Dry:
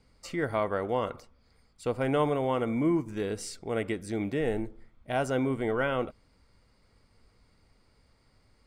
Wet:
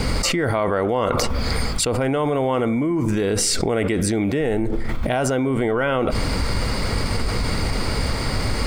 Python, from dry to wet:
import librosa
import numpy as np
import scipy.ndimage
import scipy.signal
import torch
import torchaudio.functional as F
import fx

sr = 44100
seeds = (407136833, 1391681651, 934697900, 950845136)

y = fx.env_flatten(x, sr, amount_pct=100)
y = F.gain(torch.from_numpy(y), 2.5).numpy()